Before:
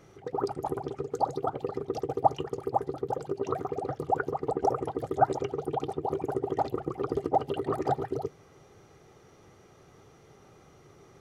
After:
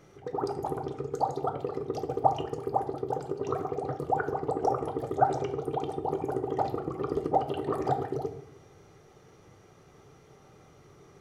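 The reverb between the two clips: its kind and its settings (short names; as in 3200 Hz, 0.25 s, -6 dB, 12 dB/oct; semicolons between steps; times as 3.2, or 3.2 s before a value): shoebox room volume 150 m³, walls mixed, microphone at 0.41 m; gain -1 dB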